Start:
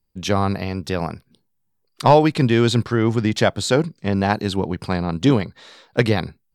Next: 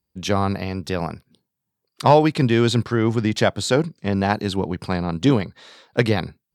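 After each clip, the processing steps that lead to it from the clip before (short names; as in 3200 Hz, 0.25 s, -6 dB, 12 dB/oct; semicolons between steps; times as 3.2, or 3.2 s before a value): HPF 59 Hz; gain -1 dB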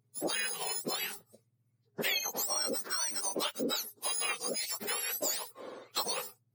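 spectrum mirrored in octaves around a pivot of 1400 Hz; low shelf 340 Hz -6 dB; compressor 4:1, threshold -32 dBFS, peak gain reduction 15 dB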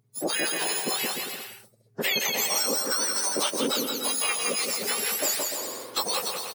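bouncing-ball echo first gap 0.17 s, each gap 0.75×, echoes 5; gain +5.5 dB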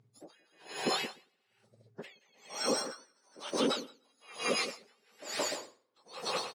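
air absorption 96 m; limiter -21 dBFS, peak gain reduction 4.5 dB; dB-linear tremolo 1.1 Hz, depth 40 dB; gain +2 dB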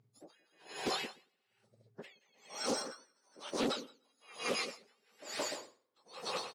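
Doppler distortion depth 0.34 ms; gain -4 dB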